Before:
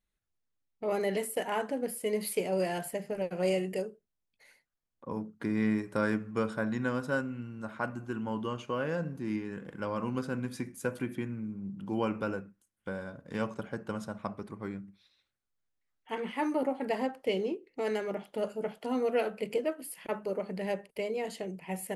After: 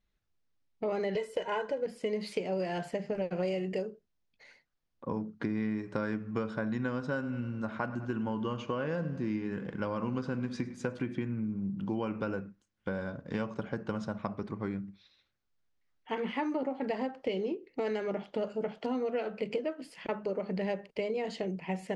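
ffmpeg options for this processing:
ffmpeg -i in.wav -filter_complex "[0:a]asettb=1/sr,asplit=3[link_01][link_02][link_03];[link_01]atrim=end=1.154[link_04];[link_02]atrim=start=1.15:end=1.86,asetpts=PTS-STARTPTS,afade=type=in:duration=0.004:curve=qsin,afade=type=out:start_time=0.706:duration=0.004:curve=qsin,aecho=1:1:2:0.74,atrim=end_sample=31311[link_05];[link_03]atrim=start=1.856[link_06];[link_04][link_05]acrossfade=duration=0.004:curve1=hsin:curve2=qsin[link_07];[link_07][link_06]acrossfade=duration=0.004:curve1=qsin:curve2=hsin,asettb=1/sr,asplit=3[link_08][link_09][link_10];[link_08]atrim=end=7.064[link_11];[link_09]atrim=start=7.06:end=10.95,asetpts=PTS-STARTPTS,afade=type=in:duration=0.004:curve=qsin,afade=type=out:start_time=3.886:duration=0.004:curve=qsin,aecho=1:1:102|204|306|408|510:0.126|0.068|0.0367|0.0198|0.0107,atrim=end_sample=171549[link_12];[link_10]atrim=start=10.946[link_13];[link_11][link_12]acrossfade=duration=0.004:curve1=hsin:curve2=qsin[link_14];[link_14][link_13]acrossfade=duration=0.004:curve1=qsin:curve2=hsin,lowpass=frequency=6000:width=0.5412,lowpass=frequency=6000:width=1.3066,lowshelf=frequency=370:gain=3,acompressor=threshold=-33dB:ratio=6,volume=3.5dB" out.wav

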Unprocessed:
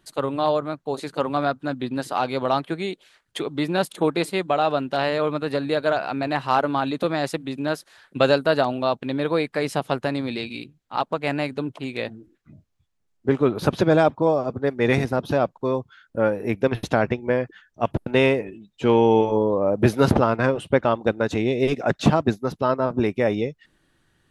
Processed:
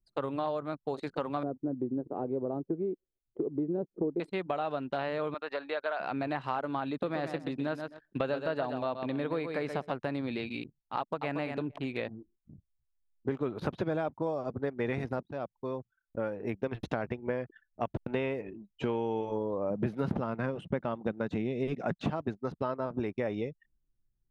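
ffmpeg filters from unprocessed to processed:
ffmpeg -i in.wav -filter_complex "[0:a]asettb=1/sr,asplit=3[link_01][link_02][link_03];[link_01]atrim=end=1.434[link_04];[link_02]atrim=start=1.43:end=4.2,asetpts=PTS-STARTPTS,afade=type=in:duration=0.004:curve=qsin,afade=type=out:start_time=2.766:duration=0.004:curve=qsin,lowpass=frequency=400:width_type=q:width=2.1[link_05];[link_03]atrim=start=4.196[link_06];[link_04][link_05]acrossfade=duration=0.004:curve1=hsin:curve2=qsin[link_07];[link_07][link_06]acrossfade=duration=0.004:curve1=qsin:curve2=hsin,asettb=1/sr,asplit=3[link_08][link_09][link_10];[link_08]atrim=end=5.344[link_11];[link_09]atrim=start=5.34:end=6,asetpts=PTS-STARTPTS,afade=type=in:duration=0.004:curve=qsin,afade=type=out:start_time=0.656:duration=0.004:curve=qsin,highpass=680,lowpass=4300[link_12];[link_10]atrim=start=5.996[link_13];[link_11][link_12]acrossfade=duration=0.004:curve1=hsin:curve2=qsin[link_14];[link_14][link_13]acrossfade=duration=0.004:curve1=qsin:curve2=hsin,asplit=3[link_15][link_16][link_17];[link_15]afade=type=out:start_time=7.06:duration=0.02[link_18];[link_16]aecho=1:1:127|254|381:0.355|0.0781|0.0172,afade=type=in:start_time=7.06:duration=0.02,afade=type=out:start_time=9.92:duration=0.02[link_19];[link_17]afade=type=in:start_time=9.92:duration=0.02[link_20];[link_18][link_19][link_20]amix=inputs=3:normalize=0,asplit=2[link_21][link_22];[link_22]afade=type=in:start_time=10.98:duration=0.01,afade=type=out:start_time=11.38:duration=0.01,aecho=0:1:230|460:0.398107|0.0597161[link_23];[link_21][link_23]amix=inputs=2:normalize=0,asettb=1/sr,asplit=3[link_24][link_25][link_26];[link_24]atrim=end=19.704[link_27];[link_25]atrim=start=19.7:end=22.05,asetpts=PTS-STARTPTS,afade=type=in:duration=0.004:curve=qsin,afade=type=out:start_time=2.346:duration=0.004:curve=qsin,equalizer=frequency=180:width_type=o:width=0.77:gain=9.5[link_28];[link_26]atrim=start=22.046[link_29];[link_27][link_28]acrossfade=duration=0.004:curve1=hsin:curve2=qsin[link_30];[link_30][link_29]acrossfade=duration=0.004:curve1=qsin:curve2=hsin,asplit=2[link_31][link_32];[link_31]atrim=end=15.23,asetpts=PTS-STARTPTS,afade=type=out:start_time=15.226:duration=0.004:curve=hsin:silence=0.188365[link_33];[link_32]atrim=start=15.23,asetpts=PTS-STARTPTS,afade=type=in:duration=2.16:silence=0.188365[link_34];[link_33][link_34]concat=n=2:v=0:a=1,acrossover=split=3200[link_35][link_36];[link_36]acompressor=threshold=-48dB:ratio=4:attack=1:release=60[link_37];[link_35][link_37]amix=inputs=2:normalize=0,anlmdn=0.251,acompressor=threshold=-28dB:ratio=4,volume=-2.5dB" out.wav

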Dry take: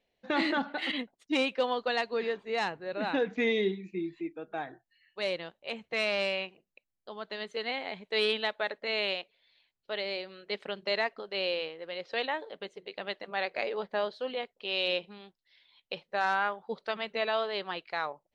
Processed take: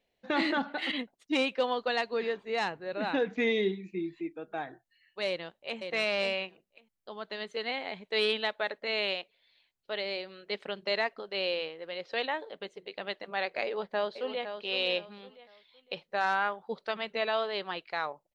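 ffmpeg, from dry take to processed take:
ffmpeg -i in.wav -filter_complex "[0:a]asplit=2[link_01][link_02];[link_02]afade=type=in:start_time=5.27:duration=0.01,afade=type=out:start_time=5.8:duration=0.01,aecho=0:1:540|1080:0.501187|0.0501187[link_03];[link_01][link_03]amix=inputs=2:normalize=0,asplit=2[link_04][link_05];[link_05]afade=type=in:start_time=13.64:duration=0.01,afade=type=out:start_time=14.56:duration=0.01,aecho=0:1:510|1020|1530:0.354813|0.106444|0.0319332[link_06];[link_04][link_06]amix=inputs=2:normalize=0" out.wav

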